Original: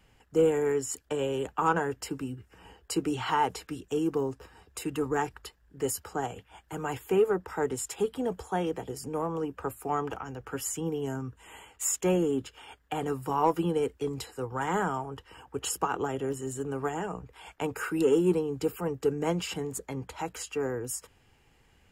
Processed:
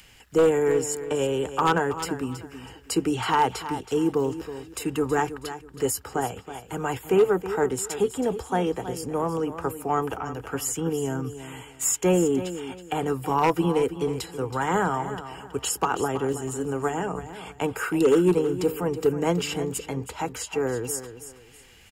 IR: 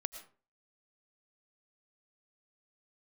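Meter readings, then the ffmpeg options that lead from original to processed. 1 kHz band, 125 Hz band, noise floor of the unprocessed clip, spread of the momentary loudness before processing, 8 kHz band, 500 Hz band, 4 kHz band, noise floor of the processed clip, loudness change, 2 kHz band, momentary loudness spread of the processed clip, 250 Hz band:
+5.0 dB, +5.0 dB, -64 dBFS, 12 LU, +5.5 dB, +5.0 dB, +5.5 dB, -50 dBFS, +5.0 dB, +5.5 dB, 12 LU, +5.0 dB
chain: -filter_complex "[0:a]acrossover=split=1900[a][b];[b]acompressor=mode=upward:threshold=-49dB:ratio=2.5[c];[a][c]amix=inputs=2:normalize=0,aeval=exprs='0.141*(abs(mod(val(0)/0.141+3,4)-2)-1)':c=same,aecho=1:1:323|646|969:0.251|0.0678|0.0183,volume=5dB"

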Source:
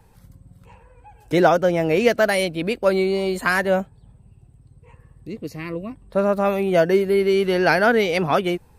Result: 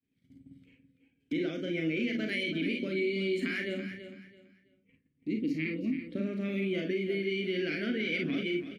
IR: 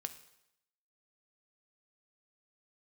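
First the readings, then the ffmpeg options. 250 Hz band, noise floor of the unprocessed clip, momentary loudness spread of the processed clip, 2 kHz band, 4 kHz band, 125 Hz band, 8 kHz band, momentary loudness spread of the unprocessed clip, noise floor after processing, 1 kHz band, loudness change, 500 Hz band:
-7.5 dB, -53 dBFS, 6 LU, -11.5 dB, -8.0 dB, -11.0 dB, under -20 dB, 14 LU, -75 dBFS, -32.0 dB, -13.0 dB, -16.0 dB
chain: -filter_complex "[0:a]acompressor=threshold=-23dB:ratio=6,asplit=3[a][b][c];[a]bandpass=f=270:t=q:w=8,volume=0dB[d];[b]bandpass=f=2.29k:t=q:w=8,volume=-6dB[e];[c]bandpass=f=3.01k:t=q:w=8,volume=-9dB[f];[d][e][f]amix=inputs=3:normalize=0,bandreject=f=47.36:t=h:w=4,bandreject=f=94.72:t=h:w=4,bandreject=f=142.08:t=h:w=4,bandreject=f=189.44:t=h:w=4,bandreject=f=236.8:t=h:w=4,bandreject=f=284.16:t=h:w=4,bandreject=f=331.52:t=h:w=4,asplit=2[g][h];[h]aecho=0:1:37|51:0.501|0.398[i];[g][i]amix=inputs=2:normalize=0,acontrast=43,equalizer=f=990:w=1.1:g=-7,alimiter=level_in=5.5dB:limit=-24dB:level=0:latency=1:release=49,volume=-5.5dB,agate=range=-33dB:threshold=-52dB:ratio=3:detection=peak,asplit=2[j][k];[k]aecho=0:1:332|664|996:0.282|0.0733|0.0191[l];[j][l]amix=inputs=2:normalize=0,volume=6dB"

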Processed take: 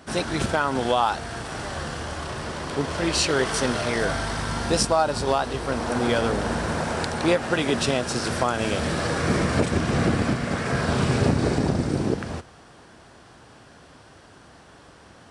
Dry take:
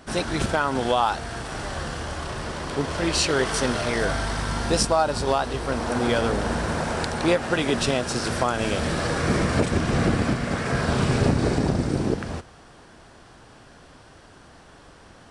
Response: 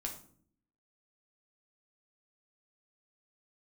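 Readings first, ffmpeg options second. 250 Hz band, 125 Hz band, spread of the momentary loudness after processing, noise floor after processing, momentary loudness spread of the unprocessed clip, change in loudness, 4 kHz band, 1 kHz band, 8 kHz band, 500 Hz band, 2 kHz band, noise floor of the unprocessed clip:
0.0 dB, -0.5 dB, 10 LU, -50 dBFS, 10 LU, 0.0 dB, 0.0 dB, 0.0 dB, 0.0 dB, 0.0 dB, 0.0 dB, -49 dBFS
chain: -af "highpass=58"

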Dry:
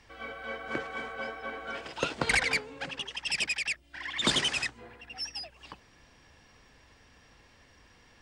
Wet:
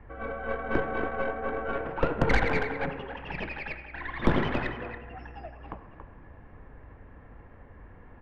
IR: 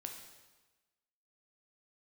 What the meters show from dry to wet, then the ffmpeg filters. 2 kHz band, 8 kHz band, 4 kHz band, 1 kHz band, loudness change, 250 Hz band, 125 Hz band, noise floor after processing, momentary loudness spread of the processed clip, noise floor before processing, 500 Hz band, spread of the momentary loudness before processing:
-1.0 dB, under -20 dB, -13.5 dB, +6.0 dB, +0.5 dB, +8.5 dB, +11.0 dB, -51 dBFS, 18 LU, -60 dBFS, +8.5 dB, 15 LU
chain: -filter_complex "[0:a]lowpass=f=1.8k:w=0.5412,lowpass=f=1.8k:w=1.3066,asplit=2[a][b];[b]adelay=280,highpass=300,lowpass=3.4k,asoftclip=type=hard:threshold=-21dB,volume=-8dB[c];[a][c]amix=inputs=2:normalize=0,asplit=2[d][e];[1:a]atrim=start_sample=2205[f];[e][f]afir=irnorm=-1:irlink=0,volume=4.5dB[g];[d][g]amix=inputs=2:normalize=0,aeval=exprs='(tanh(10*val(0)+0.6)-tanh(0.6))/10':c=same,lowshelf=f=86:g=8.5,acrossover=split=830[h][i];[h]acontrast=35[j];[j][i]amix=inputs=2:normalize=0"

